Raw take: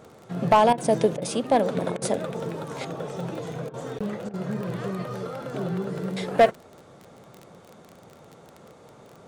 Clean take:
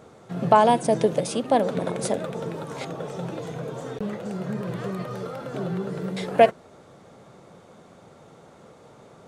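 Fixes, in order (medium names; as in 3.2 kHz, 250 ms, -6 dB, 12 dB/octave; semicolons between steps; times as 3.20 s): clip repair -10 dBFS; de-click; interpolate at 0.73/1.17/1.97/3.69/4.29 s, 46 ms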